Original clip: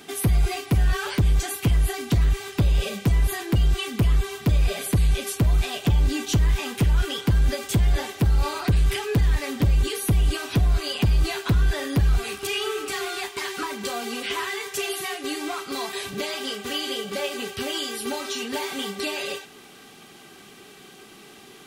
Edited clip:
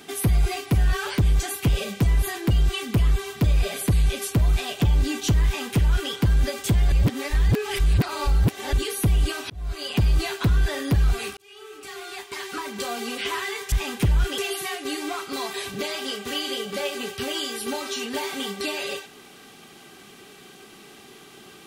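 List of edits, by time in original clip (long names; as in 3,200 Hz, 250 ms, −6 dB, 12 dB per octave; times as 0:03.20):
0:01.69–0:02.74: remove
0:06.50–0:07.16: duplicate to 0:14.77
0:07.97–0:09.78: reverse
0:10.55–0:11.05: fade in
0:12.42–0:13.97: fade in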